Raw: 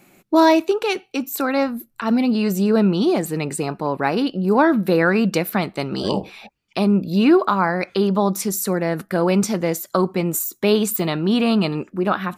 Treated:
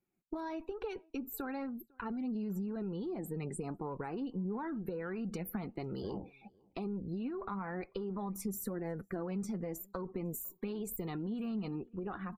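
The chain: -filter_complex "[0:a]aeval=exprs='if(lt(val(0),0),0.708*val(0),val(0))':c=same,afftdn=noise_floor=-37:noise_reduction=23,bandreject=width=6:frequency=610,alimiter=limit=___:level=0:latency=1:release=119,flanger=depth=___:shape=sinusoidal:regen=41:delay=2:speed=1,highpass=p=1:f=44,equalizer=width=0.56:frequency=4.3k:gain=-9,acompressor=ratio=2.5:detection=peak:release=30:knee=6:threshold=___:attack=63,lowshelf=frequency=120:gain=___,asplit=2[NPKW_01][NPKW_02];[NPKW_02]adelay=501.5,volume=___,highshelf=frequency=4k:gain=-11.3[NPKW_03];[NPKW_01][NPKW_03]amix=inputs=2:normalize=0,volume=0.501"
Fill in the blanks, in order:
0.178, 3, 0.00794, 12, 0.0398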